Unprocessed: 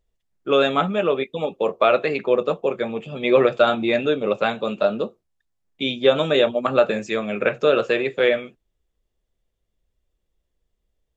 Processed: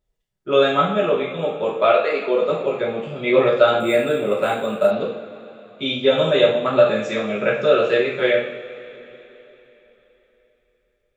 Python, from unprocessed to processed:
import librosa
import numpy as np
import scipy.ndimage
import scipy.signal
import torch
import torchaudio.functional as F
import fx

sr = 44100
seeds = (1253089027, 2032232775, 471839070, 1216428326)

y = fx.highpass(x, sr, hz=fx.line((1.91, 470.0), (2.5, 140.0)), slope=24, at=(1.91, 2.5), fade=0.02)
y = fx.rev_double_slope(y, sr, seeds[0], early_s=0.55, late_s=3.8, knee_db=-19, drr_db=-5.0)
y = fx.resample_linear(y, sr, factor=4, at=(3.8, 4.91))
y = F.gain(torch.from_numpy(y), -5.0).numpy()